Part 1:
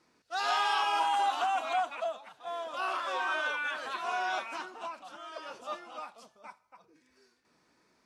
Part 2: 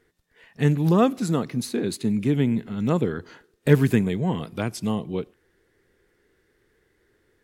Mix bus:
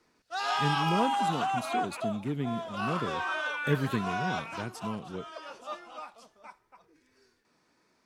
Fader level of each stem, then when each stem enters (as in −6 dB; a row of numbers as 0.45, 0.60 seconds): −0.5, −11.0 decibels; 0.00, 0.00 seconds